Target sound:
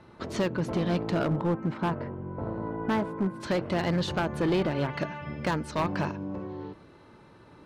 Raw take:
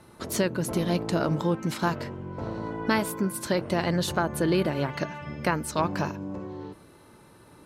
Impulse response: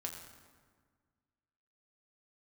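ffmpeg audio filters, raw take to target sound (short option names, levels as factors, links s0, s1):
-af "asetnsamples=n=441:p=0,asendcmd='1.27 lowpass f 1400;3.4 lowpass f 4100',lowpass=3700,asoftclip=type=hard:threshold=0.0841"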